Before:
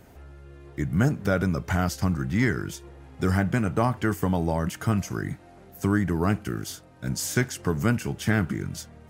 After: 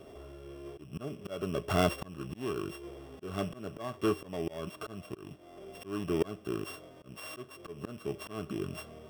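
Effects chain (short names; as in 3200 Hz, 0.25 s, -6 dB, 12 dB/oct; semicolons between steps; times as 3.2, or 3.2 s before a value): sample sorter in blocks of 16 samples; small resonant body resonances 410/600/1100/3300 Hz, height 16 dB, ringing for 25 ms; auto swell 0.584 s; gain -7 dB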